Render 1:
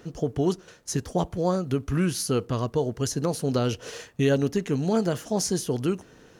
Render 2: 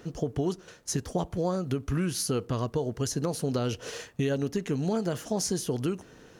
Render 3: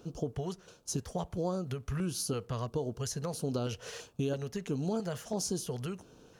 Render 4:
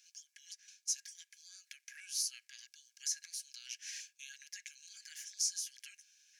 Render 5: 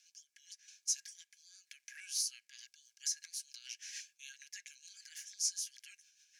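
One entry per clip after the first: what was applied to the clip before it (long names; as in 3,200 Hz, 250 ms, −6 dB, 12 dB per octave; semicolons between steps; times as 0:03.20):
downward compressor 4 to 1, threshold −25 dBFS, peak gain reduction 7.5 dB
auto-filter notch square 1.5 Hz 300–1,900 Hz; level −4.5 dB
Chebyshev high-pass with heavy ripple 1,600 Hz, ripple 9 dB; level +4.5 dB
rotating-speaker cabinet horn 0.85 Hz, later 6.7 Hz, at 0:02.22; level +1.5 dB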